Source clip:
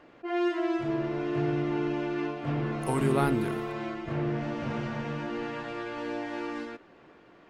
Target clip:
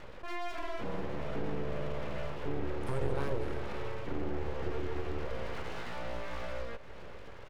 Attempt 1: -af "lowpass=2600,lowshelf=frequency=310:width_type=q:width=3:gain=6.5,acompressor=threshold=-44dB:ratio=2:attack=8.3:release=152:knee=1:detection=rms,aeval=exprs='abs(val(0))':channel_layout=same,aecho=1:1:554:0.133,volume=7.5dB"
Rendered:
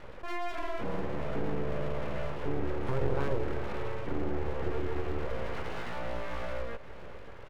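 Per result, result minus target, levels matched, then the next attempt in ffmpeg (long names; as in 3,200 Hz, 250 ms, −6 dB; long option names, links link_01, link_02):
8,000 Hz band −3.5 dB; downward compressor: peak gain reduction −3 dB
-af "lowpass=6600,lowshelf=frequency=310:width_type=q:width=3:gain=6.5,acompressor=threshold=-44dB:ratio=2:attack=8.3:release=152:knee=1:detection=rms,aeval=exprs='abs(val(0))':channel_layout=same,aecho=1:1:554:0.133,volume=7.5dB"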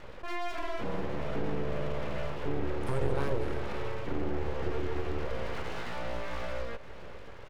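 downward compressor: peak gain reduction −3 dB
-af "lowpass=6600,lowshelf=frequency=310:width_type=q:width=3:gain=6.5,acompressor=threshold=-50dB:ratio=2:attack=8.3:release=152:knee=1:detection=rms,aeval=exprs='abs(val(0))':channel_layout=same,aecho=1:1:554:0.133,volume=7.5dB"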